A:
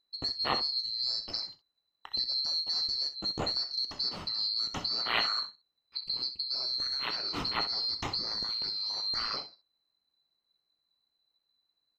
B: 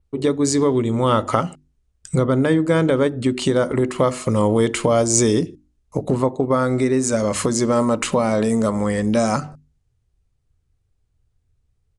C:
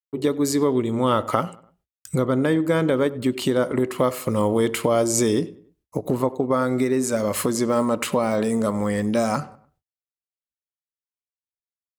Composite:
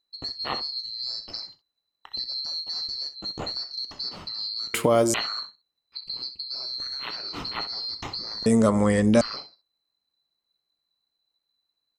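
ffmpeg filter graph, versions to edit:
-filter_complex "[0:a]asplit=3[s0][s1][s2];[s0]atrim=end=4.742[s3];[2:a]atrim=start=4.738:end=5.142[s4];[s1]atrim=start=5.138:end=8.462[s5];[1:a]atrim=start=8.458:end=9.212[s6];[s2]atrim=start=9.208[s7];[s3][s4]acrossfade=d=0.004:c1=hsin:c2=hsin[s8];[s8][s5]acrossfade=d=0.004:c1=hsin:c2=hsin[s9];[s9][s6]acrossfade=d=0.004:c1=hsin:c2=hsin[s10];[s10][s7]acrossfade=d=0.004:c1=hsin:c2=hsin"

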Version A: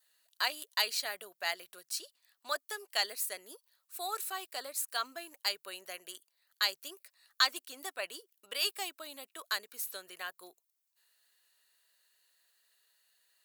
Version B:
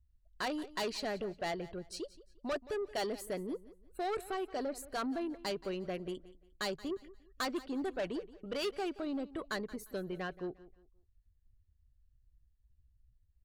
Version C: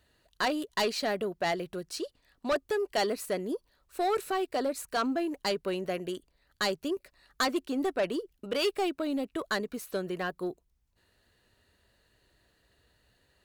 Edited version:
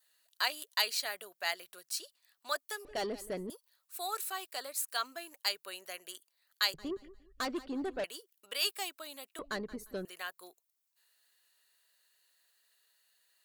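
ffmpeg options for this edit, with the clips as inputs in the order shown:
-filter_complex "[1:a]asplit=3[s0][s1][s2];[0:a]asplit=4[s3][s4][s5][s6];[s3]atrim=end=2.852[s7];[s0]atrim=start=2.848:end=3.502[s8];[s4]atrim=start=3.498:end=6.742[s9];[s1]atrim=start=6.738:end=8.042[s10];[s5]atrim=start=8.038:end=9.392[s11];[s2]atrim=start=9.388:end=10.052[s12];[s6]atrim=start=10.048[s13];[s7][s8]acrossfade=d=0.004:c1=hsin:c2=hsin[s14];[s14][s9]acrossfade=d=0.004:c1=hsin:c2=hsin[s15];[s15][s10]acrossfade=d=0.004:c1=hsin:c2=hsin[s16];[s16][s11]acrossfade=d=0.004:c1=hsin:c2=hsin[s17];[s17][s12]acrossfade=d=0.004:c1=hsin:c2=hsin[s18];[s18][s13]acrossfade=d=0.004:c1=hsin:c2=hsin"

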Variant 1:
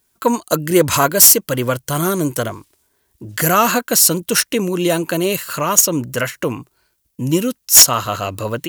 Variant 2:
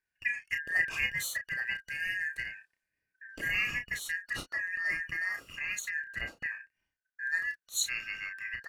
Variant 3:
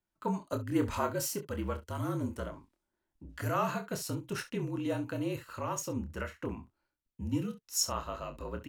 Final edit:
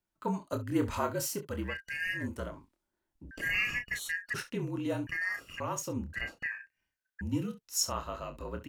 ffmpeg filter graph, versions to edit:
-filter_complex "[1:a]asplit=4[s0][s1][s2][s3];[2:a]asplit=5[s4][s5][s6][s7][s8];[s4]atrim=end=1.79[s9];[s0]atrim=start=1.63:end=2.28[s10];[s5]atrim=start=2.12:end=3.312[s11];[s1]atrim=start=3.308:end=4.342[s12];[s6]atrim=start=4.338:end=5.072[s13];[s2]atrim=start=5.068:end=5.602[s14];[s7]atrim=start=5.598:end=6.132[s15];[s3]atrim=start=6.128:end=7.212[s16];[s8]atrim=start=7.208[s17];[s9][s10]acrossfade=d=0.16:c1=tri:c2=tri[s18];[s18][s11]acrossfade=d=0.16:c1=tri:c2=tri[s19];[s19][s12]acrossfade=d=0.004:c1=hsin:c2=hsin[s20];[s20][s13]acrossfade=d=0.004:c1=hsin:c2=hsin[s21];[s21][s14]acrossfade=d=0.004:c1=hsin:c2=hsin[s22];[s22][s15]acrossfade=d=0.004:c1=hsin:c2=hsin[s23];[s23][s16]acrossfade=d=0.004:c1=hsin:c2=hsin[s24];[s24][s17]acrossfade=d=0.004:c1=hsin:c2=hsin"

